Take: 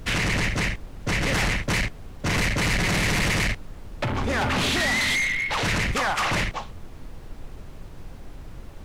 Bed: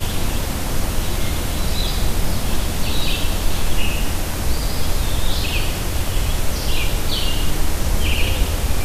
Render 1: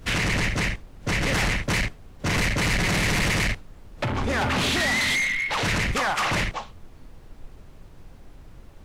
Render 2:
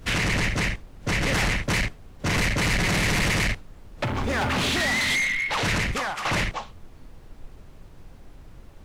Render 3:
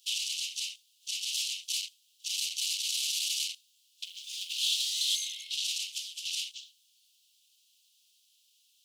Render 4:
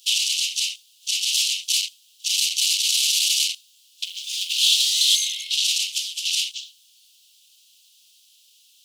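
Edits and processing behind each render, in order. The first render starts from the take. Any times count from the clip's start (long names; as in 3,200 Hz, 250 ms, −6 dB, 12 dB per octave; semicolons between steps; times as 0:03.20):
noise reduction from a noise print 6 dB
0:04.05–0:05.10: mu-law and A-law mismatch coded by A; 0:05.77–0:06.25: fade out, to −9 dB
Butterworth high-pass 2,900 Hz 72 dB per octave
level +11.5 dB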